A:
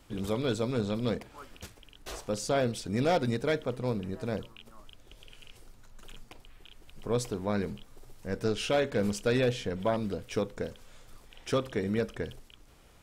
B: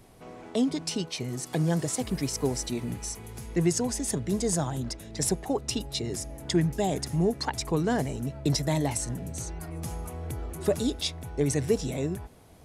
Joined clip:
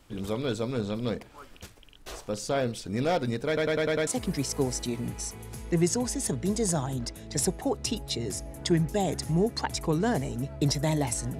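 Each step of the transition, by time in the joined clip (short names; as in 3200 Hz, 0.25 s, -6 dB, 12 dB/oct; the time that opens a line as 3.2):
A
3.47 stutter in place 0.10 s, 6 plays
4.07 switch to B from 1.91 s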